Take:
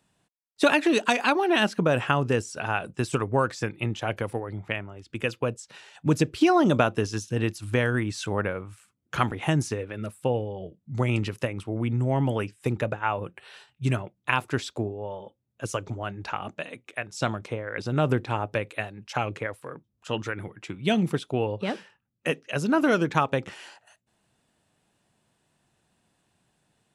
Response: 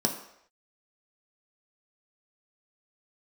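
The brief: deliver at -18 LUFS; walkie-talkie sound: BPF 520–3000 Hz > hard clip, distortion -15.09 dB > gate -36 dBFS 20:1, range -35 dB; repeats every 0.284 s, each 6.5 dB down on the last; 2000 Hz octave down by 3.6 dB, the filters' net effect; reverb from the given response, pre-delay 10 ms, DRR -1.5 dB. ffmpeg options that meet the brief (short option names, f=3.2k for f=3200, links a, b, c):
-filter_complex "[0:a]equalizer=f=2k:t=o:g=-4,aecho=1:1:284|568|852|1136|1420|1704:0.473|0.222|0.105|0.0491|0.0231|0.0109,asplit=2[a][b];[1:a]atrim=start_sample=2205,adelay=10[c];[b][c]afir=irnorm=-1:irlink=0,volume=-7dB[d];[a][d]amix=inputs=2:normalize=0,highpass=520,lowpass=3k,asoftclip=type=hard:threshold=-15.5dB,agate=range=-35dB:threshold=-36dB:ratio=20,volume=8.5dB"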